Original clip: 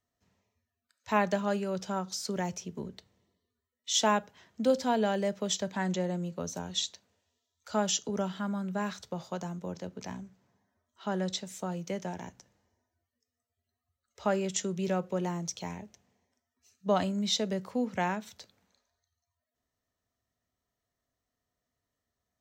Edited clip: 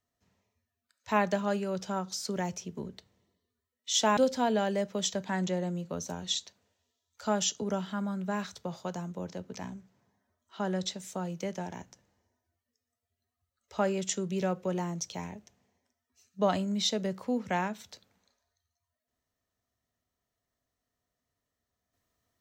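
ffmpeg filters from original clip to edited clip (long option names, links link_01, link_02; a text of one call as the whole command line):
ffmpeg -i in.wav -filter_complex "[0:a]asplit=2[link_01][link_02];[link_01]atrim=end=4.172[link_03];[link_02]atrim=start=4.638[link_04];[link_03][link_04]acrossfade=duration=0.004:curve1=hsin:curve2=hsin" out.wav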